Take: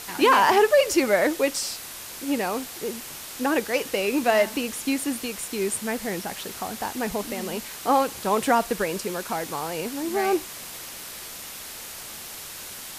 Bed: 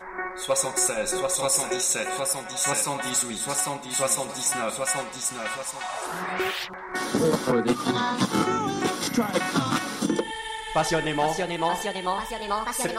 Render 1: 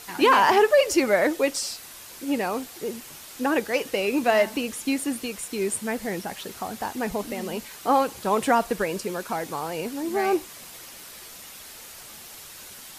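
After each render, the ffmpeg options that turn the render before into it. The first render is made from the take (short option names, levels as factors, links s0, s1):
-af "afftdn=nr=6:nf=-39"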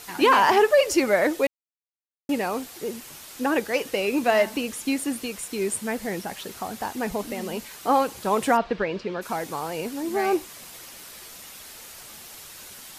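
-filter_complex "[0:a]asplit=3[s0][s1][s2];[s0]afade=t=out:st=8.56:d=0.02[s3];[s1]lowpass=f=4100:w=0.5412,lowpass=f=4100:w=1.3066,afade=t=in:st=8.56:d=0.02,afade=t=out:st=9.21:d=0.02[s4];[s2]afade=t=in:st=9.21:d=0.02[s5];[s3][s4][s5]amix=inputs=3:normalize=0,asplit=3[s6][s7][s8];[s6]atrim=end=1.47,asetpts=PTS-STARTPTS,afade=t=out:st=1.466:d=0.004:c=hsin[s9];[s7]atrim=start=1.47:end=2.29,asetpts=PTS-STARTPTS,volume=0[s10];[s8]atrim=start=2.29,asetpts=PTS-STARTPTS,afade=t=in:d=0.004:c=hsin[s11];[s9][s10][s11]concat=n=3:v=0:a=1"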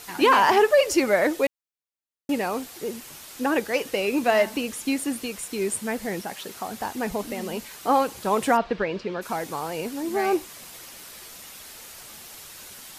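-filter_complex "[0:a]asettb=1/sr,asplit=3[s0][s1][s2];[s0]atrim=end=6.214[s3];[s1]atrim=start=6.21:end=6.72,asetpts=PTS-STARTPTS,afade=t=in:d=0.004:c=qsin,afade=t=out:st=0.506:d=0.004:c=qsin,highpass=f=170:p=1[s4];[s2]atrim=start=6.716[s5];[s3][s4]acrossfade=d=0.004:c1=hsin:c2=qsin[s6];[s6][s5]acrossfade=d=0.004:c1=qsin:c2=hsin"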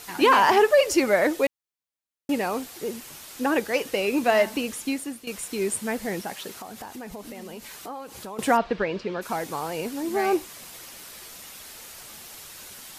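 -filter_complex "[0:a]asettb=1/sr,asplit=3[s0][s1][s2];[s0]atrim=end=6.514[s3];[s1]atrim=start=6.51:end=8.39,asetpts=PTS-STARTPTS,afade=t=in:d=0.004:c=qsin,afade=t=out:st=1.876:d=0.004:c=qsin,acompressor=threshold=0.0158:ratio=4:attack=3.2:release=140:knee=1:detection=peak[s4];[s2]atrim=start=8.386[s5];[s3][s4]acrossfade=d=0.004:c1=hsin:c2=qsin[s6];[s6][s5]acrossfade=d=0.004:c1=qsin:c2=hsin,asplit=2[s7][s8];[s7]atrim=end=5.27,asetpts=PTS-STARTPTS,afade=t=out:st=4.74:d=0.53:silence=0.223872[s9];[s8]atrim=start=5.27,asetpts=PTS-STARTPTS,afade=t=in:d=0.004:c=hsin:silence=0.223872[s10];[s9][s10]concat=n=2:v=0:a=1"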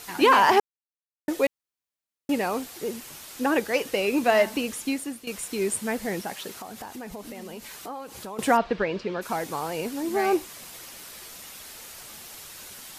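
-filter_complex "[0:a]asplit=3[s0][s1][s2];[s0]atrim=end=0.6,asetpts=PTS-STARTPTS,afade=t=out:st=0.596:d=0.004:c=hsin[s3];[s1]atrim=start=0.6:end=1.28,asetpts=PTS-STARTPTS,volume=0[s4];[s2]atrim=start=1.28,asetpts=PTS-STARTPTS,afade=t=in:d=0.004:c=hsin[s5];[s3][s4][s5]concat=n=3:v=0:a=1"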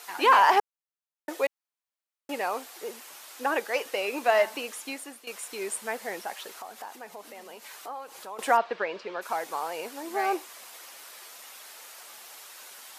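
-af "highpass=750,tiltshelf=f=1300:g=4.5"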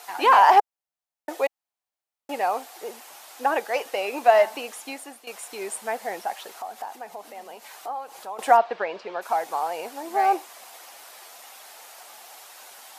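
-af "equalizer=f=750:t=o:w=0.59:g=9"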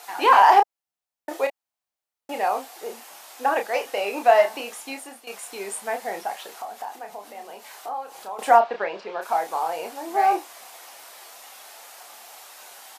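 -filter_complex "[0:a]asplit=2[s0][s1];[s1]adelay=30,volume=0.501[s2];[s0][s2]amix=inputs=2:normalize=0"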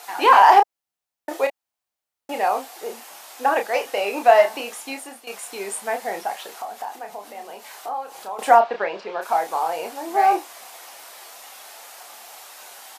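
-af "volume=1.33,alimiter=limit=0.794:level=0:latency=1"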